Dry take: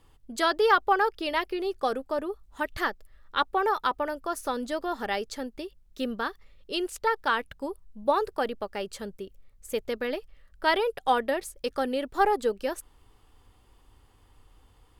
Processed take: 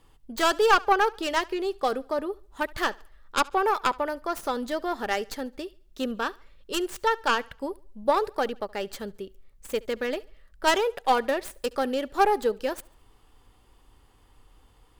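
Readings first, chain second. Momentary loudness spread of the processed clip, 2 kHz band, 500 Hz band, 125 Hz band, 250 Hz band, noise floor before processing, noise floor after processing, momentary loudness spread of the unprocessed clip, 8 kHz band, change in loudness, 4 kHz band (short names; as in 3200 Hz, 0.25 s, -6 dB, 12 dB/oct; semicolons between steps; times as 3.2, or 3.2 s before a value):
13 LU, +1.5 dB, +1.5 dB, n/a, +1.5 dB, -60 dBFS, -59 dBFS, 13 LU, +4.5 dB, +1.5 dB, +2.5 dB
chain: tracing distortion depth 0.14 ms; bell 80 Hz -5 dB; thinning echo 71 ms, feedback 39%, high-pass 180 Hz, level -23.5 dB; gain +1.5 dB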